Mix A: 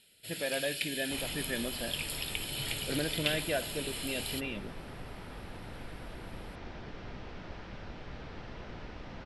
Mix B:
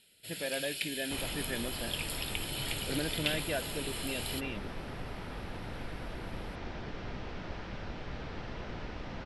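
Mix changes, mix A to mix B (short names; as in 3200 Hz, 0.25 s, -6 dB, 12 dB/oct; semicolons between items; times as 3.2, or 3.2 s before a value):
second sound +3.5 dB; reverb: off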